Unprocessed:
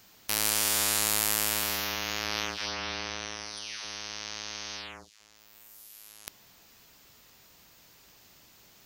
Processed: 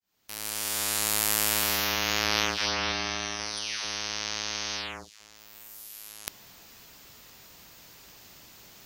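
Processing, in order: opening faded in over 2.19 s; 2.92–3.4 notch comb 490 Hz; gain +6 dB

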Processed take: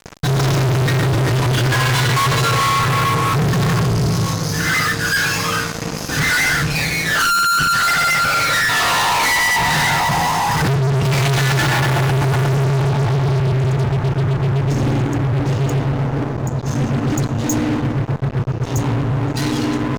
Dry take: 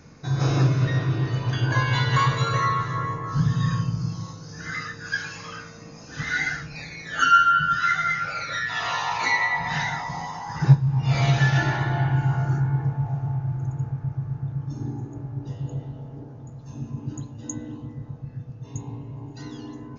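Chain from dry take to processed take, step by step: fuzz box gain 41 dB, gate -43 dBFS; gain -1.5 dB

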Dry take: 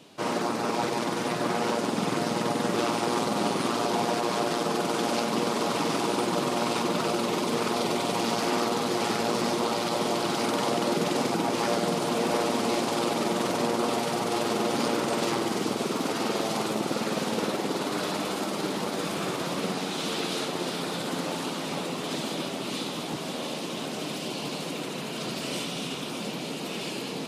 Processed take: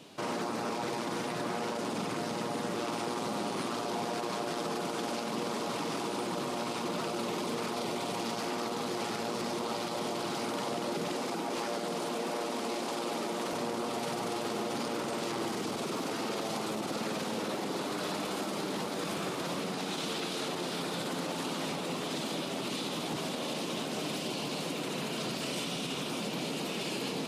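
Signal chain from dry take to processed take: limiter -26 dBFS, peak gain reduction 11 dB; 11.13–13.53 HPF 190 Hz 12 dB/oct

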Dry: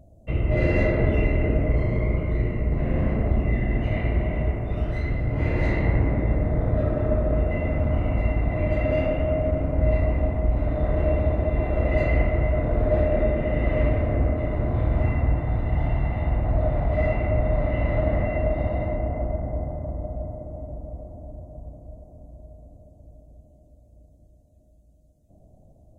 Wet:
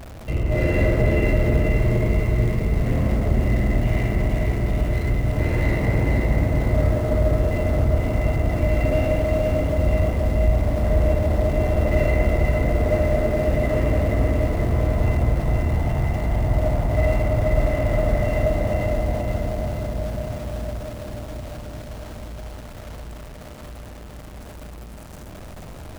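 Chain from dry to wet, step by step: zero-crossing step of -33.5 dBFS; lo-fi delay 0.478 s, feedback 55%, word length 8-bit, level -4 dB

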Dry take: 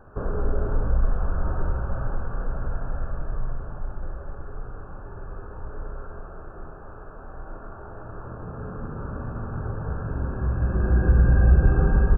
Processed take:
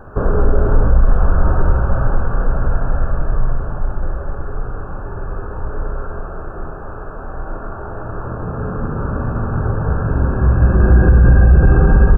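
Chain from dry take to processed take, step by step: maximiser +13 dB; gain -1 dB

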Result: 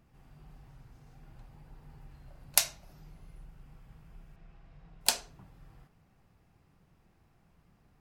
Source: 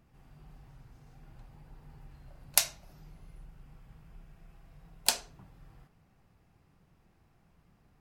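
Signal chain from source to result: 4.36–5.01 LPF 4800 Hz 12 dB/oct

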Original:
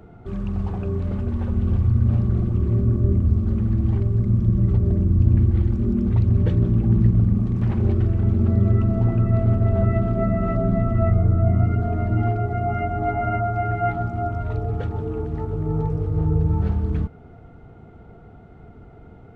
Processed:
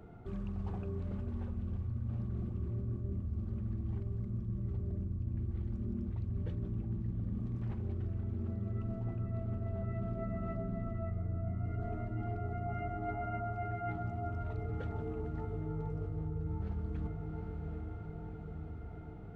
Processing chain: diffused feedback echo 0.792 s, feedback 64%, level -13 dB; reverse; compressor 6:1, threshold -27 dBFS, peak gain reduction 16 dB; reverse; gain -7.5 dB

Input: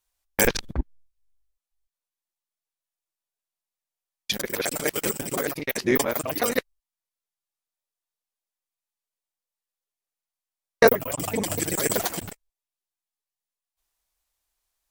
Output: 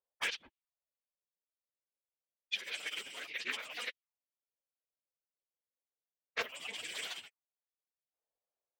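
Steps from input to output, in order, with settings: auto-wah 520–2900 Hz, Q 3.3, up, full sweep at -30 dBFS; plain phase-vocoder stretch 0.59×; Doppler distortion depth 0.22 ms; gain +3.5 dB

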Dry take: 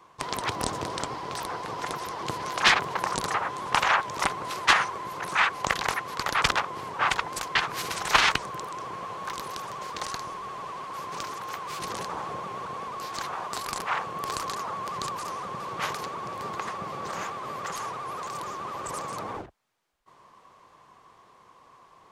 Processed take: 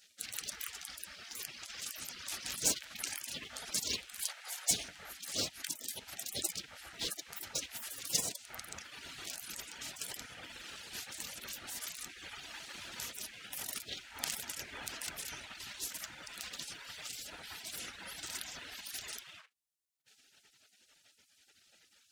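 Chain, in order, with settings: half-wave gain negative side -7 dB; reverb removal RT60 1.2 s; spectral gate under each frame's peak -25 dB weak; 4.21–4.71 HPF 610 Hz 24 dB/oct; gain +10 dB

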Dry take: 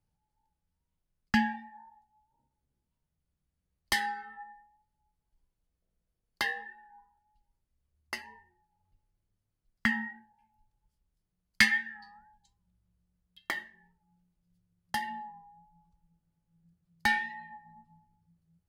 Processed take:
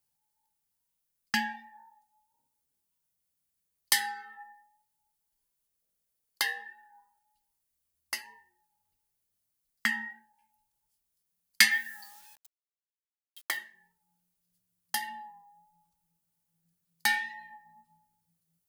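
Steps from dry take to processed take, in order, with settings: 11.71–13.57 requantised 10-bit, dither none; RIAA curve recording; gain -2 dB

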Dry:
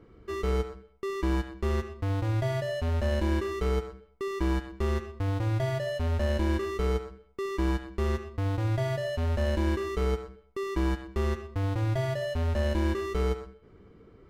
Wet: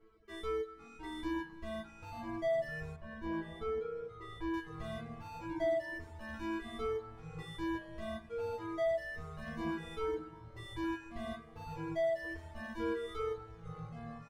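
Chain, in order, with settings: on a send: feedback echo 0.226 s, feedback 57%, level -13.5 dB; on the sum: compressor, threshold -27 dBFS, peak gain reduction 5 dB; resonator bank A3 fifth, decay 0.41 s; echoes that change speed 0.381 s, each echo -6 st, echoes 3, each echo -6 dB; 2.96–4.54 high shelf 3700 Hz -11 dB; reverb removal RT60 2 s; bell 230 Hz -9 dB 0.81 oct; gain +9.5 dB

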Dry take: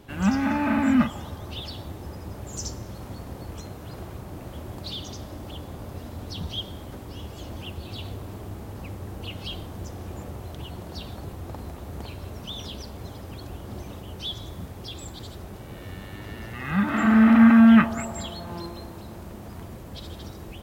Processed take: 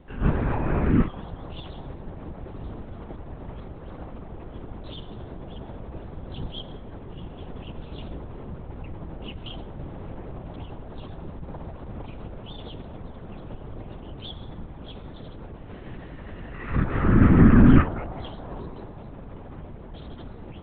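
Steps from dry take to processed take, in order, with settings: high shelf 2500 Hz -10.5 dB; LPC vocoder at 8 kHz whisper

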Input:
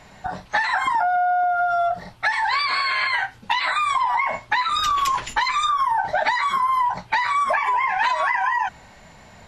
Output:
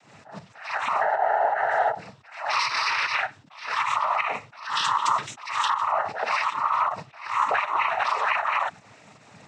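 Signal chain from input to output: pump 157 bpm, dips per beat 1, -9 dB, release 89 ms; noise vocoder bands 12; attack slew limiter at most 110 dB/s; gain -2 dB

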